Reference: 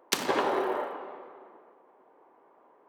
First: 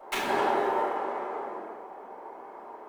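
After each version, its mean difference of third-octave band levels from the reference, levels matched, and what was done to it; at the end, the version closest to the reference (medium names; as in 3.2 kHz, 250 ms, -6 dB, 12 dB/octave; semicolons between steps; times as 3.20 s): 6.5 dB: median filter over 9 samples; bass shelf 370 Hz -5 dB; compression 2.5:1, threshold -48 dBFS, peak gain reduction 15.5 dB; simulated room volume 130 m³, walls mixed, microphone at 5.4 m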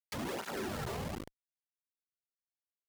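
11.0 dB: time-frequency box 0.35–0.88 s, 250–1300 Hz -15 dB; compression 3:1, threshold -37 dBFS, peak gain reduction 12 dB; Schmitt trigger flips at -40 dBFS; cancelling through-zero flanger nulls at 1.1 Hz, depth 4 ms; trim +9.5 dB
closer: first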